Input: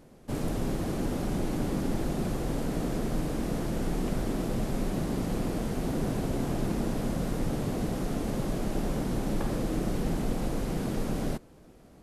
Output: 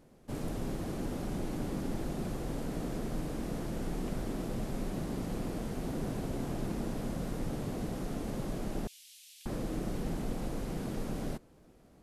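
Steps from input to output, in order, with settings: 8.87–9.46 steep high-pass 2700 Hz 36 dB/oct; gain -6 dB

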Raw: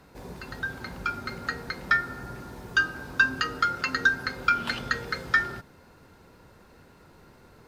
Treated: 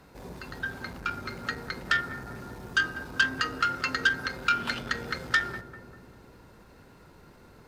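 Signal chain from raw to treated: darkening echo 0.197 s, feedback 74%, low-pass 880 Hz, level -10.5 dB; core saturation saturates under 2800 Hz

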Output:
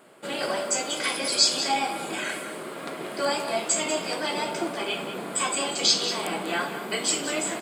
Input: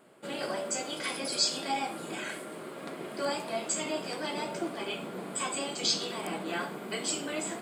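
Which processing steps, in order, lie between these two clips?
low shelf 390 Hz -6 dB; echo 0.191 s -10.5 dB; gain +7.5 dB

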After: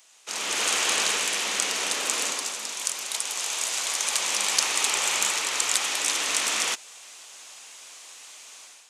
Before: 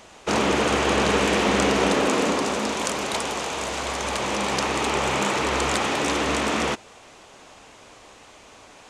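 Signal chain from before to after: differentiator; AGC gain up to 12 dB; gain -1 dB

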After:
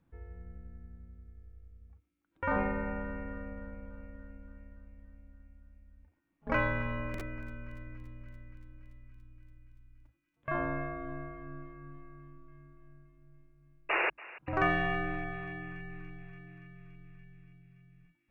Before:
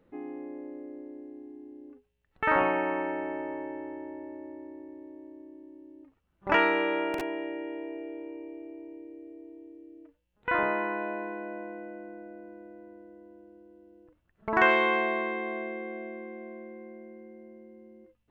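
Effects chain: painted sound noise, 13.89–14.1, 660–3200 Hz -23 dBFS; frequency shift -350 Hz; thinning echo 0.286 s, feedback 77%, high-pass 720 Hz, level -17.5 dB; gain -6 dB

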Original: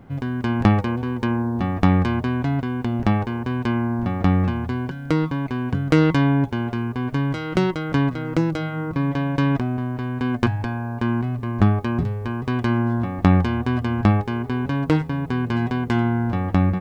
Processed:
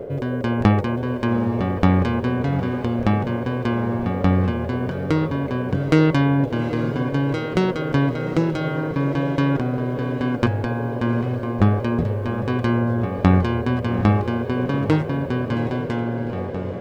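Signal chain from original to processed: ending faded out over 1.57 s; reverse; upward compressor, threshold -21 dBFS; reverse; diffused feedback echo 0.789 s, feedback 49%, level -12 dB; band noise 350–600 Hz -32 dBFS

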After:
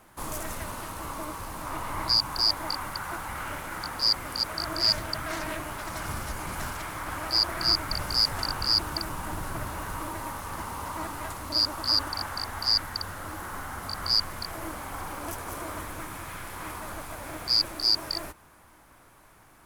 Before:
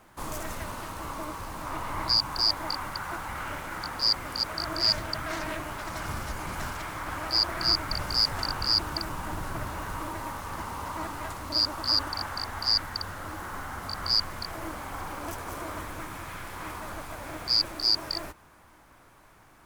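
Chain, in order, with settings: bell 11000 Hz +6.5 dB 0.73 oct

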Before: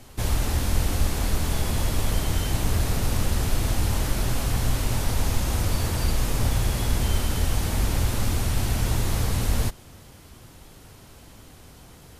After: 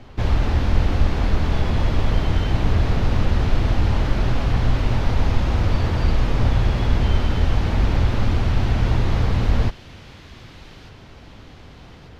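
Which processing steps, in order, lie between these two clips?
air absorption 240 m; thin delay 1.194 s, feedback 53%, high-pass 2200 Hz, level -11.5 dB; gain +5.5 dB

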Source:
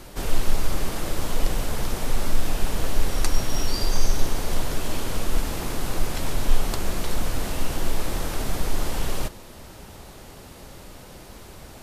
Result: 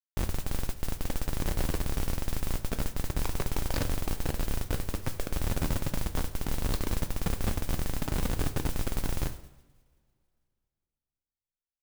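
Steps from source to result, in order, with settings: Schmitt trigger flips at -25 dBFS; two-slope reverb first 0.85 s, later 2.7 s, from -20 dB, DRR 9 dB; modulation noise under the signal 15 dB; gain -7.5 dB

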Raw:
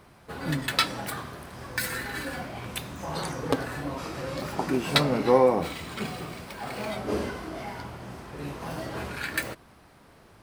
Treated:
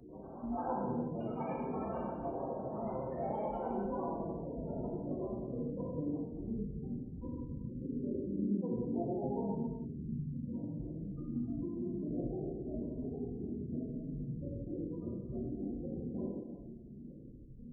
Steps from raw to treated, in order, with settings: low-pass sweep 460 Hz -> 190 Hz, 2.18–4.22; compressor 4:1, threshold -43 dBFS, peak gain reduction 20.5 dB; time stretch by phase-locked vocoder 1.7×; low shelf 390 Hz +7 dB; grains, grains 20/s, pitch spread up and down by 12 st; spectral gate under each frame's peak -25 dB strong; bell 96 Hz -13 dB 1.7 oct; non-linear reverb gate 0.46 s falling, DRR -6.5 dB; upward compressor, threshold -50 dBFS; de-hum 55.31 Hz, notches 12

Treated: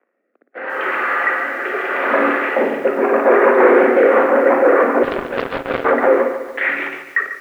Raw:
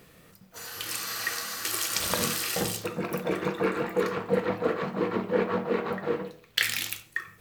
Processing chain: 3.57–4.26 half-waves squared off; sample leveller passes 5; AGC gain up to 11 dB; rotary speaker horn 0.8 Hz, later 6.3 Hz, at 3.93; soft clip -6 dBFS, distortion -15 dB; mistuned SSB +51 Hz 250–2000 Hz; flutter echo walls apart 9.7 m, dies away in 0.37 s; 5.03–5.85 power-law curve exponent 3; lo-fi delay 0.144 s, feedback 55%, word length 7-bit, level -11 dB

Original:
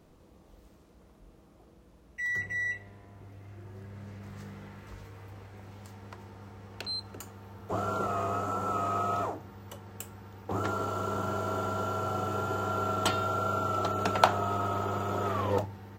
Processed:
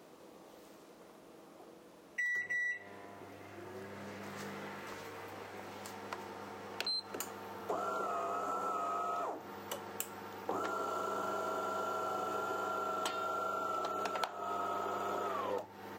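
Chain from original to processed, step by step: HPF 320 Hz 12 dB/oct; compressor 10:1, threshold -41 dBFS, peak gain reduction 26 dB; gain +6.5 dB

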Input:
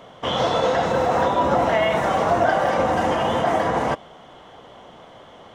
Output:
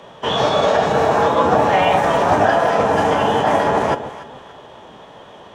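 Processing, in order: frequency shift +26 Hz; echo with dull and thin repeats by turns 0.144 s, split 810 Hz, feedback 55%, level -9 dB; formant-preserving pitch shift -3 st; gain +4.5 dB

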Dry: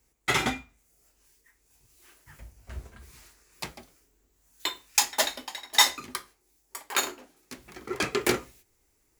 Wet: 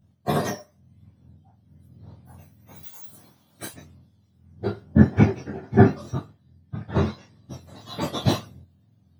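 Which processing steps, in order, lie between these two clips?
spectrum mirrored in octaves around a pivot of 1200 Hz; 2.83–3.74 tilt +4.5 dB/oct; detuned doubles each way 33 cents; gain +5 dB

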